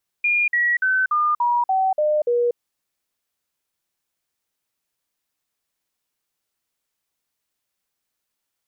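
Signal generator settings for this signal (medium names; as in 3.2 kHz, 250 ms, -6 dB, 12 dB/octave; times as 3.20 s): stepped sine 2.42 kHz down, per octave 3, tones 8, 0.24 s, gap 0.05 s -16 dBFS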